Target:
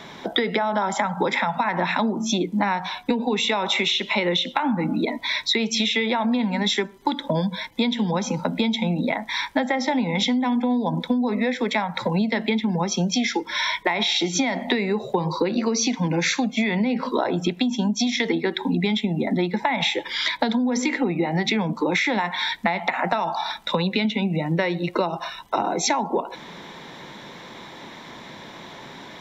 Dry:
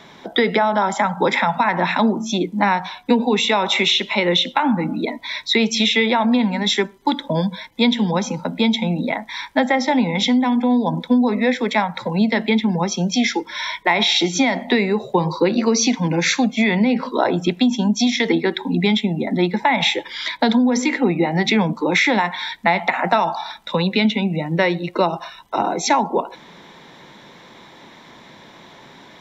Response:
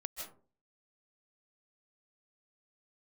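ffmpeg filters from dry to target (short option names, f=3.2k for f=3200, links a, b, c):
-af "acompressor=threshold=-23dB:ratio=6,volume=3.5dB"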